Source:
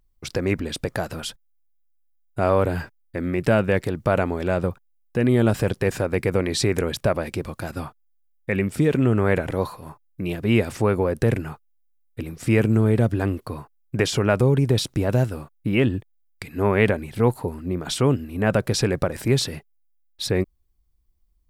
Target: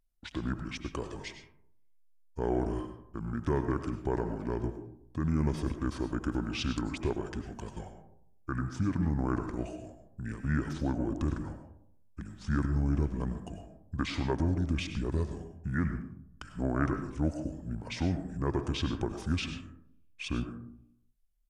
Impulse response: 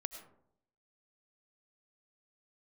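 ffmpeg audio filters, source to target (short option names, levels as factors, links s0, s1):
-filter_complex "[0:a]asetrate=28595,aresample=44100,atempo=1.54221[s0];[1:a]atrim=start_sample=2205[s1];[s0][s1]afir=irnorm=-1:irlink=0,volume=0.376"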